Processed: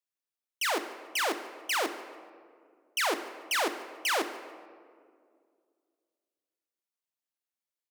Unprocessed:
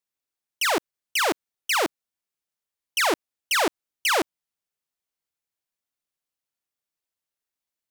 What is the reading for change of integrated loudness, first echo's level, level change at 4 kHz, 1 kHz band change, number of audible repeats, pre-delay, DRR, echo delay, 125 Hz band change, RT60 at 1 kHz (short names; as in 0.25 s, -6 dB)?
-6.0 dB, -18.0 dB, -6.0 dB, -6.0 dB, 1, 4 ms, 9.0 dB, 0.146 s, under -15 dB, 1.9 s